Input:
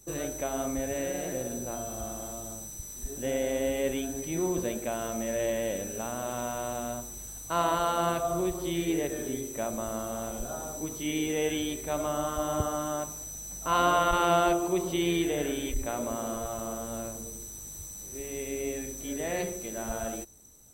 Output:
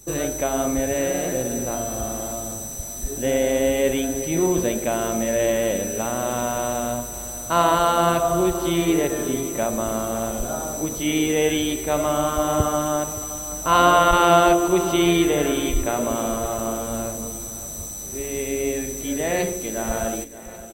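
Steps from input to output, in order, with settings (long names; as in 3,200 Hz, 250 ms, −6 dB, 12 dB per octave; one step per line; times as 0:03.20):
repeating echo 572 ms, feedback 46%, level −15 dB
level +9 dB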